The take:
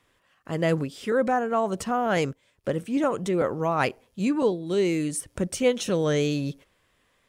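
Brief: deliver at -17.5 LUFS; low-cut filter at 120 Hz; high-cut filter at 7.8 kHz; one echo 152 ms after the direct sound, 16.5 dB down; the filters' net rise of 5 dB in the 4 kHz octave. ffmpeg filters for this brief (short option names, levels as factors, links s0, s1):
-af "highpass=120,lowpass=7800,equalizer=f=4000:t=o:g=7,aecho=1:1:152:0.15,volume=2.66"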